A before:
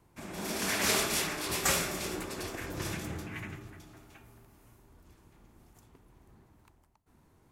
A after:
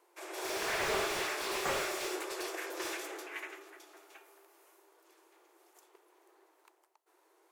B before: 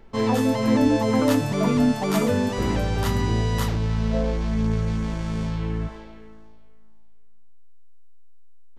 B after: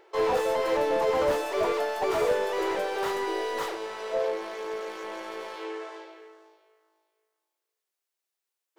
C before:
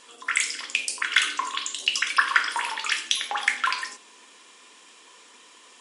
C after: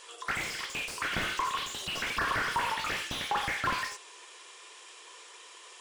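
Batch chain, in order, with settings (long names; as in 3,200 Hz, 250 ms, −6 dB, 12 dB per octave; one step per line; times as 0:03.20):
linear-phase brick-wall high-pass 320 Hz
slew-rate limiting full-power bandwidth 55 Hz
level +1 dB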